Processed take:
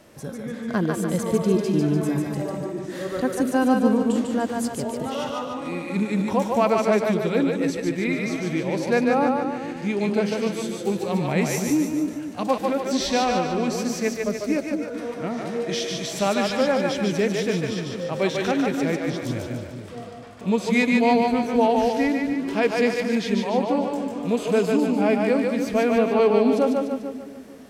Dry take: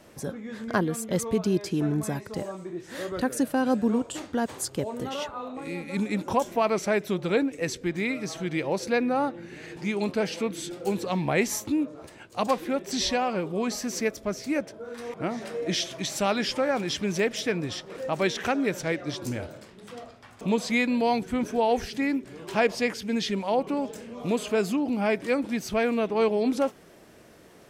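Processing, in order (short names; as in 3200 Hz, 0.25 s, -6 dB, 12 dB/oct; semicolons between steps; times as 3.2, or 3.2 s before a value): harmonic-percussive split percussive -8 dB; split-band echo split 360 Hz, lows 0.226 s, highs 0.147 s, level -3 dB; gain +4 dB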